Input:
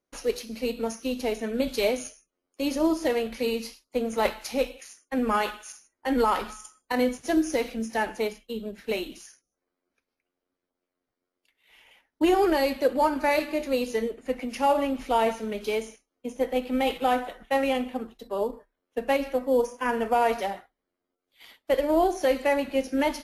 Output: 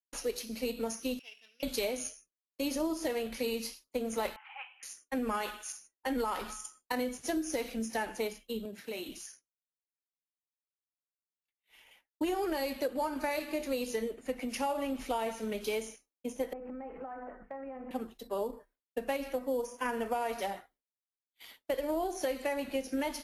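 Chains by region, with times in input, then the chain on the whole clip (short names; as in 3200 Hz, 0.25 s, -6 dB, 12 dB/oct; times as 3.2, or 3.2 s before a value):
1.19–1.63 sample sorter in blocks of 8 samples + band-pass 2700 Hz, Q 9.6
4.36–4.83 Chebyshev band-pass 780–3100 Hz, order 5 + air absorption 320 m
8.65–9.09 HPF 82 Hz 24 dB/oct + compressor 3:1, threshold -34 dBFS + mismatched tape noise reduction encoder only
16.53–17.91 inverse Chebyshev low-pass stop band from 3400 Hz + notches 50/100/150/200/250/300/350/400/450/500 Hz + compressor 16:1, threshold -35 dBFS
whole clip: expander -54 dBFS; high shelf 6200 Hz +8 dB; compressor, threshold -26 dBFS; gain -3.5 dB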